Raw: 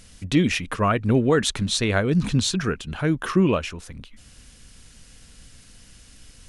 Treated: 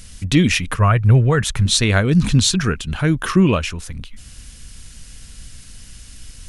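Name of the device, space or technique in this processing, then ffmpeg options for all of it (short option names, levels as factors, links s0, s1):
smiley-face EQ: -filter_complex "[0:a]lowshelf=f=120:g=5.5,equalizer=f=470:t=o:w=2.4:g=-5,highshelf=f=7700:g=4.5,asettb=1/sr,asplit=3[s0][s1][s2];[s0]atrim=end=0.744[s3];[s1]atrim=start=0.74:end=1.66,asetpts=PTS-STARTPTS,afade=t=in:d=0.004:c=qsin,afade=t=out:st=0.916:d=0.004:c=qsin,equalizer=f=125:t=o:w=1:g=7,equalizer=f=250:t=o:w=1:g=-11,equalizer=f=4000:t=o:w=1:g=-8,equalizer=f=8000:t=o:w=1:g=-5[s4];[s2]atrim=start=1.656[s5];[s3][s4]acrossfade=d=0.004:c1=hsin:c2=qsin[s6];[s6][s5]acrossfade=d=0.004:c1=qsin:c2=hsin,volume=2.11"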